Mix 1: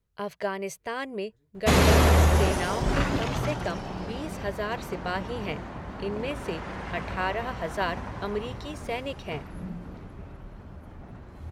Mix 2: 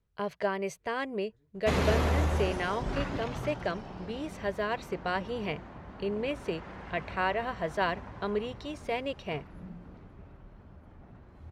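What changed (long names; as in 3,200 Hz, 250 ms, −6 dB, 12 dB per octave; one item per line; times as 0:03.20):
background −8.0 dB
master: add high-shelf EQ 7,200 Hz −12 dB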